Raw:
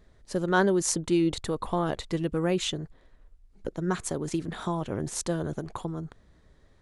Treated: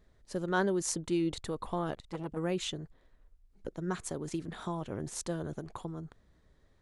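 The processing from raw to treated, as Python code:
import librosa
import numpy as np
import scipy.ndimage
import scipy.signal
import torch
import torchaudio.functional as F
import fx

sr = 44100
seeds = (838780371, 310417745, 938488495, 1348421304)

y = fx.transformer_sat(x, sr, knee_hz=670.0, at=(1.93, 2.37))
y = y * librosa.db_to_amplitude(-6.5)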